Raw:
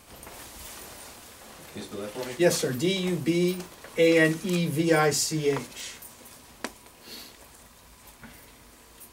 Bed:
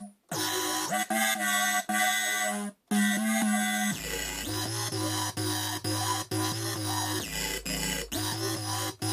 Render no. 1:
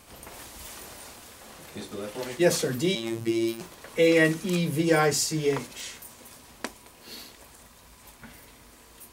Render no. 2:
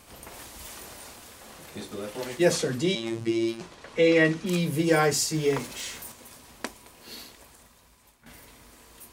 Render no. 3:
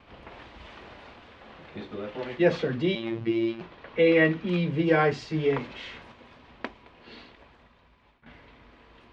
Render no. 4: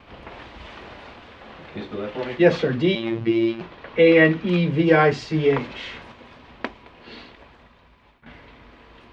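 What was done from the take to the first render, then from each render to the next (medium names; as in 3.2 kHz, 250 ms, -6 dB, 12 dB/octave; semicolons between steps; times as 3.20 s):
2.95–3.61 s: robot voice 114 Hz
2.50–4.45 s: low-pass 9.7 kHz -> 4.9 kHz; 5.34–6.12 s: companding laws mixed up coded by mu; 7.23–8.26 s: fade out, to -13.5 dB
low-pass 3.3 kHz 24 dB/octave; gate with hold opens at -55 dBFS
trim +6 dB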